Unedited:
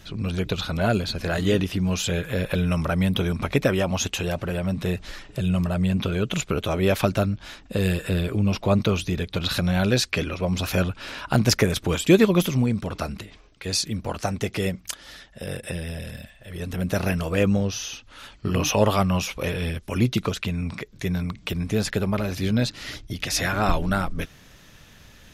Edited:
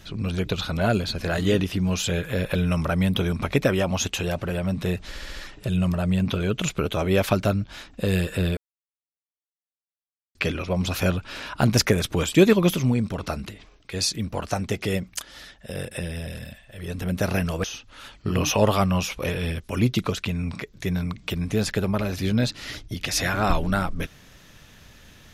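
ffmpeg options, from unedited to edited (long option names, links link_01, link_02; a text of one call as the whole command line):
ffmpeg -i in.wav -filter_complex "[0:a]asplit=8[link_01][link_02][link_03][link_04][link_05][link_06][link_07][link_08];[link_01]atrim=end=5.152[link_09];[link_02]atrim=start=5.078:end=5.152[link_10];[link_03]atrim=start=5.078:end=5.152[link_11];[link_04]atrim=start=5.078:end=5.152[link_12];[link_05]atrim=start=5.078:end=8.29,asetpts=PTS-STARTPTS,afade=type=out:start_time=3.208:duration=0.004:curve=hsin[link_13];[link_06]atrim=start=8.29:end=10.07,asetpts=PTS-STARTPTS,volume=0[link_14];[link_07]atrim=start=10.07:end=17.362,asetpts=PTS-STARTPTS,afade=type=in:duration=0.004:curve=hsin[link_15];[link_08]atrim=start=17.828[link_16];[link_09][link_10]acrossfade=duration=0.004:curve1=hsin:curve2=hsin[link_17];[link_17][link_11]acrossfade=duration=0.004:curve1=hsin:curve2=hsin[link_18];[link_18][link_12]acrossfade=duration=0.004:curve1=hsin:curve2=hsin[link_19];[link_13][link_14][link_15]concat=n=3:v=0:a=1[link_20];[link_19][link_20]acrossfade=duration=0.004:curve1=hsin:curve2=hsin[link_21];[link_21][link_16]acrossfade=duration=0.004:curve1=hsin:curve2=hsin" out.wav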